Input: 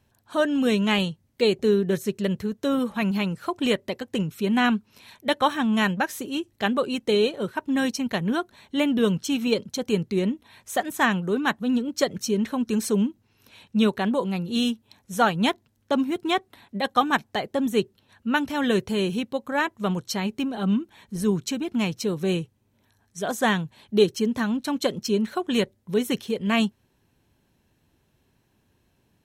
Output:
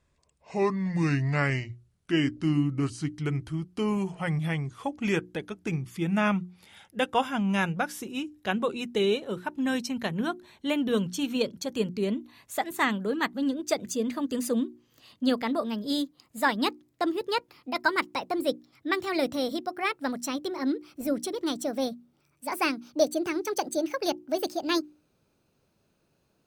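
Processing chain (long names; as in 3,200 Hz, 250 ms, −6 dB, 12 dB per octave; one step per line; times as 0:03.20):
gliding playback speed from 63% → 158%
mains-hum notches 60/120/180/240/300/360 Hz
level −4 dB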